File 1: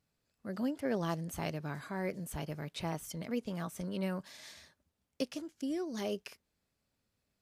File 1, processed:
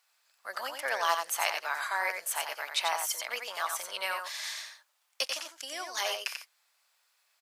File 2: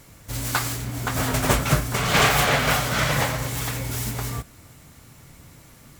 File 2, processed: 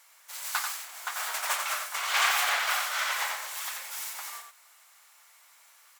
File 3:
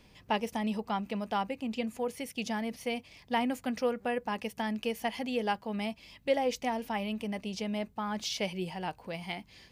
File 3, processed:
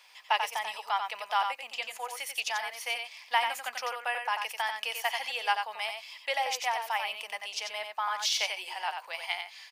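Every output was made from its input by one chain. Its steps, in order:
HPF 840 Hz 24 dB/oct; on a send: echo 90 ms -6 dB; on the sum: normalise peaks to -12 dBFS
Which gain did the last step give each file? +13.5, -6.0, +6.5 dB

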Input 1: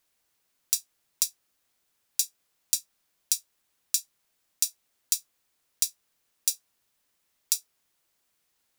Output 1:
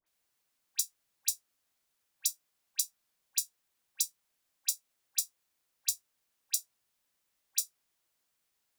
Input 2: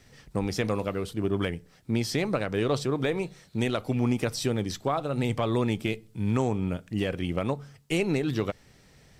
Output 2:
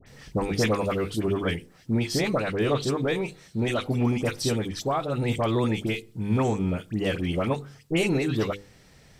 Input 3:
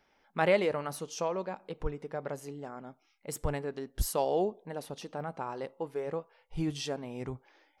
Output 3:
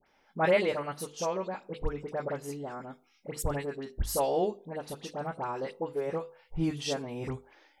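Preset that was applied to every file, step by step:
notches 50/100/150/200/250/300/350/400/450/500 Hz; vocal rider within 4 dB 2 s; dispersion highs, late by 67 ms, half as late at 1700 Hz; normalise peaks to -12 dBFS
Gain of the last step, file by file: -5.0, +2.5, +0.5 dB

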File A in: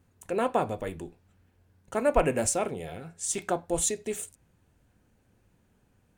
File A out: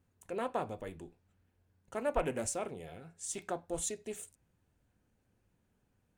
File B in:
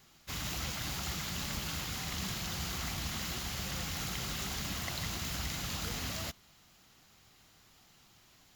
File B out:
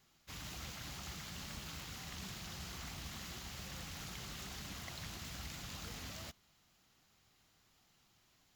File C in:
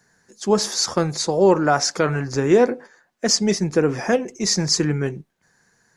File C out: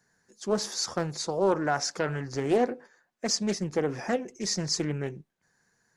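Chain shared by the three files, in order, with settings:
Doppler distortion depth 0.28 ms; gain -9 dB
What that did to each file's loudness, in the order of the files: -9.0, -9.5, -9.5 LU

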